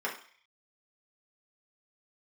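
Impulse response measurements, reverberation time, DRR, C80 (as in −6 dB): 0.45 s, −4.5 dB, 13.0 dB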